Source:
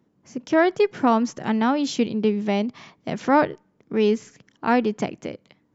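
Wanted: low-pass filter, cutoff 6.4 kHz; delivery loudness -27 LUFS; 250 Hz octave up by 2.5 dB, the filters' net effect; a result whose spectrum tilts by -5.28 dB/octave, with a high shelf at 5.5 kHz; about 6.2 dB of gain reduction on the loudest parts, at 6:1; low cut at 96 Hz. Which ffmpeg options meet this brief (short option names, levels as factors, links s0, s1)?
-af "highpass=96,lowpass=6400,equalizer=f=250:t=o:g=3,highshelf=f=5500:g=-5,acompressor=threshold=0.112:ratio=6,volume=0.891"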